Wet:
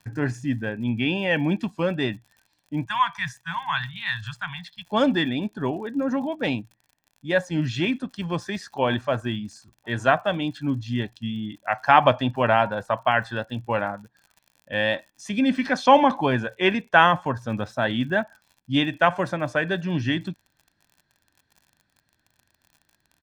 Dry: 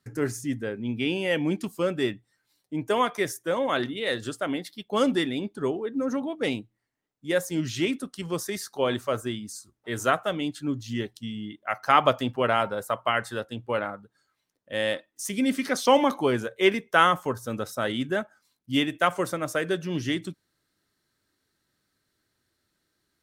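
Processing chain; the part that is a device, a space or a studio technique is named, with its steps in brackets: 2.85–4.91 s: elliptic band-stop 160–980 Hz, stop band 50 dB; lo-fi chain (low-pass 3.3 kHz 12 dB/octave; wow and flutter; crackle 55 per s -46 dBFS); comb 1.2 ms, depth 56%; trim +4 dB

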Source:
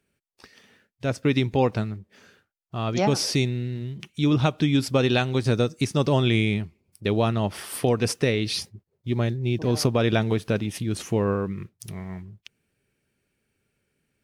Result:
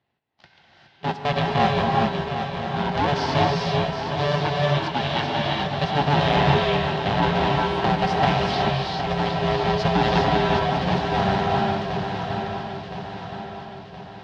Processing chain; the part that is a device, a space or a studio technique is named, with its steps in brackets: 4.42–5.66 s: high-pass 800 Hz 6 dB/octave; ring modulator pedal into a guitar cabinet (polarity switched at an audio rate 290 Hz; cabinet simulation 92–4000 Hz, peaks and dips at 140 Hz +4 dB, 480 Hz -9 dB, 850 Hz +6 dB, 1.2 kHz -6 dB, 2.3 kHz -5 dB); shuffle delay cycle 1019 ms, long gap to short 3:1, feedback 50%, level -8.5 dB; gated-style reverb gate 440 ms rising, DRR -1 dB

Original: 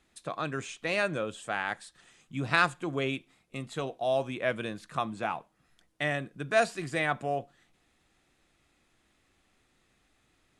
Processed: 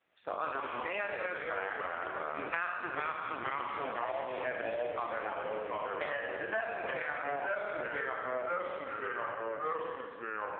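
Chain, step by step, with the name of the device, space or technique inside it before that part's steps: spectral sustain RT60 1.33 s; 6.11–6.62 s: rippled EQ curve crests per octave 1.3, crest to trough 16 dB; ever faster or slower copies 127 ms, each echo -2 st, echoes 3; voicemail (band-pass 430–2600 Hz; compression 10:1, threshold -29 dBFS, peak gain reduction 13 dB; AMR-NB 4.75 kbps 8 kHz)

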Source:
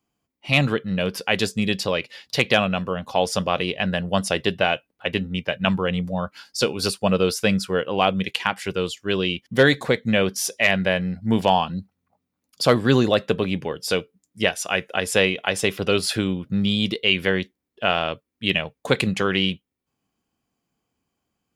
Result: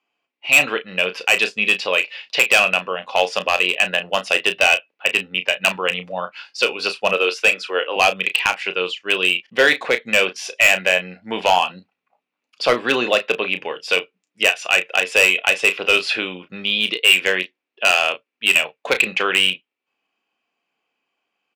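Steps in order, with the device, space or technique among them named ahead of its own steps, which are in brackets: 7.13–7.96 s: high-pass 270 Hz 24 dB/octave; megaphone (band-pass 510–3700 Hz; peaking EQ 2.6 kHz +11 dB 0.4 oct; hard clipper -11 dBFS, distortion -10 dB; doubling 33 ms -10 dB); trim +4 dB

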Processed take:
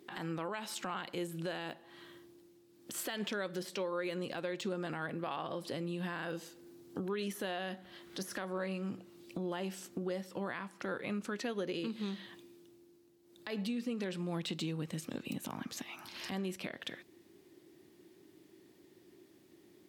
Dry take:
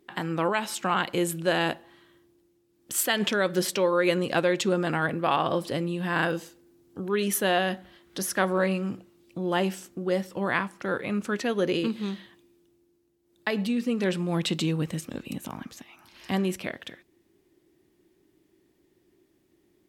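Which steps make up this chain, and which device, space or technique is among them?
broadcast voice chain (high-pass 110 Hz; de-esser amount 65%; compression 4:1, threshold -42 dBFS, peak gain reduction 19.5 dB; peaking EQ 4.3 kHz +3 dB 0.72 oct; peak limiter -32 dBFS, peak gain reduction 10.5 dB); trim +4.5 dB

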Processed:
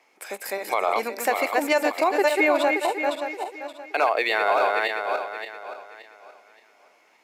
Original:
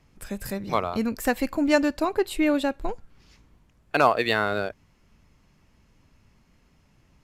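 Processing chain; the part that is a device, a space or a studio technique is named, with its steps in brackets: backward echo that repeats 287 ms, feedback 54%, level -5 dB; 2.28–2.81 s: de-esser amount 70%; laptop speaker (high-pass 380 Hz 24 dB/octave; peaking EQ 790 Hz +6.5 dB 0.59 oct; peaking EQ 2.2 kHz +10 dB 0.26 oct; peak limiter -14 dBFS, peak gain reduction 10.5 dB); trim +3 dB

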